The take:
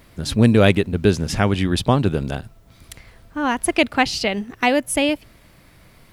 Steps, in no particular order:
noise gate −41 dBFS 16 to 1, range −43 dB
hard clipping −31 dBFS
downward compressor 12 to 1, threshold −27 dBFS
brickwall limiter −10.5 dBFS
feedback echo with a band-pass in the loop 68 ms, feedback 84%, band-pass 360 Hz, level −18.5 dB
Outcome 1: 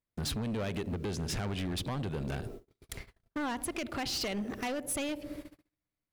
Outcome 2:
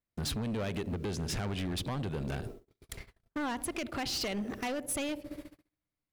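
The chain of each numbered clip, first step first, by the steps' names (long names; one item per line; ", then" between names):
brickwall limiter, then feedback echo with a band-pass in the loop, then noise gate, then downward compressor, then hard clipping
brickwall limiter, then feedback echo with a band-pass in the loop, then downward compressor, then hard clipping, then noise gate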